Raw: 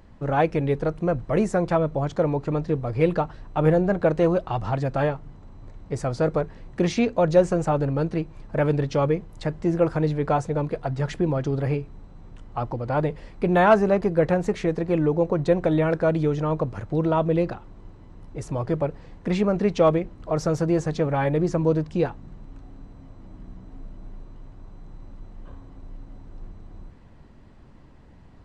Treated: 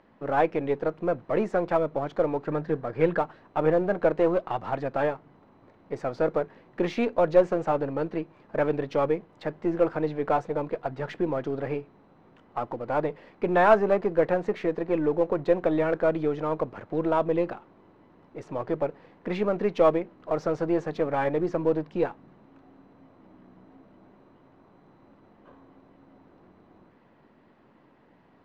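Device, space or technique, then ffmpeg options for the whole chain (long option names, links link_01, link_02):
crystal radio: -filter_complex "[0:a]highpass=260,lowpass=2900,aeval=exprs='if(lt(val(0),0),0.708*val(0),val(0))':channel_layout=same,asettb=1/sr,asplit=3[link_01][link_02][link_03];[link_01]atrim=end=2.444[link_04];[link_02]atrim=start=2.44:end=3.19,asetpts=PTS-STARTPTS,afade=type=in:duration=0.004:curve=qsin,afade=type=out:start_time=0.746:duration=0.004:curve=qsin,equalizer=frequency=160:width_type=o:width=0.33:gain=6,equalizer=frequency=1600:width_type=o:width=0.33:gain=10,equalizer=frequency=2500:width_type=o:width=0.33:gain=-3[link_05];[link_03]atrim=start=3.186[link_06];[link_04][link_05]acrossfade=duration=0.004:curve1=hsin:curve2=qsin[link_07];[link_07][link_06]acrossfade=duration=0.004:curve1=qsin:curve2=hsin"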